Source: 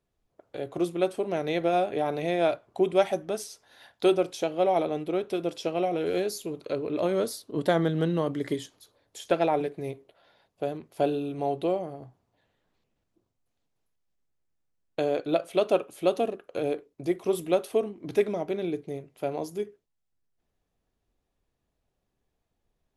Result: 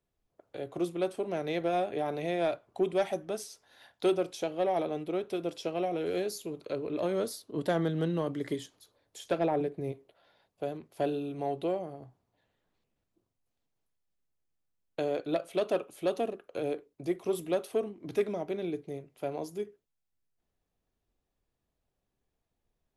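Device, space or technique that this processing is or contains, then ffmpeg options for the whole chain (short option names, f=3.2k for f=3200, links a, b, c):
one-band saturation: -filter_complex "[0:a]asettb=1/sr,asplit=3[a][b][c];[a]atrim=end=9.384[d];[b]atrim=start=9.38:end=9.92,asetpts=PTS-STARTPTS,afade=t=in:d=0.004:c=qsin,afade=t=out:st=0.536:d=0.004:c=qsin,tiltshelf=f=780:g=4.5[e];[c]atrim=start=9.916[f];[d][e]acrossfade=d=0.004:c1=hsin:c2=qsin[g];[g][f]acrossfade=d=0.004:c1=qsin:c2=hsin,acrossover=split=340|4900[h][i][j];[i]asoftclip=type=tanh:threshold=-17.5dB[k];[h][k][j]amix=inputs=3:normalize=0,volume=-4dB"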